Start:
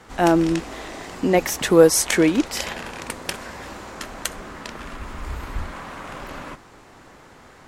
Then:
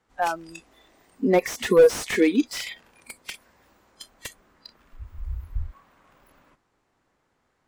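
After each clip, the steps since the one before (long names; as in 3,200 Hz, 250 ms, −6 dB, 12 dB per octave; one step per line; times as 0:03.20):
noise reduction from a noise print of the clip's start 24 dB
slew-rate limiting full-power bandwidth 160 Hz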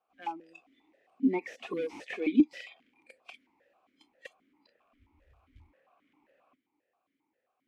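log-companded quantiser 8 bits
formant filter that steps through the vowels 7.5 Hz
level +1.5 dB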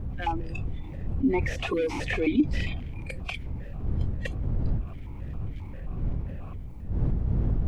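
wind on the microphone 87 Hz −37 dBFS
envelope flattener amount 50%
level −1 dB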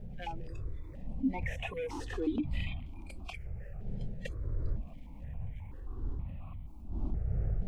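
step-sequenced phaser 2.1 Hz 300–1,600 Hz
level −5.5 dB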